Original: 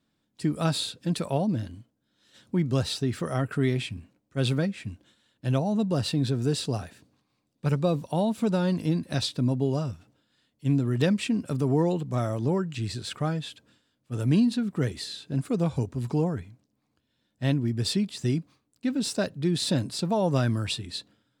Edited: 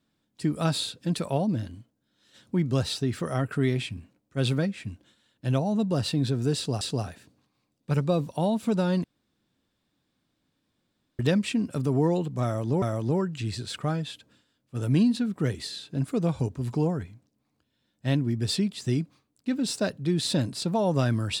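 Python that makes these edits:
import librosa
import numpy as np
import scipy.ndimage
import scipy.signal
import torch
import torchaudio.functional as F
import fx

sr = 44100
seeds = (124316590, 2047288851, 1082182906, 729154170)

y = fx.edit(x, sr, fx.repeat(start_s=6.56, length_s=0.25, count=2),
    fx.room_tone_fill(start_s=8.79, length_s=2.15),
    fx.repeat(start_s=12.19, length_s=0.38, count=2), tone=tone)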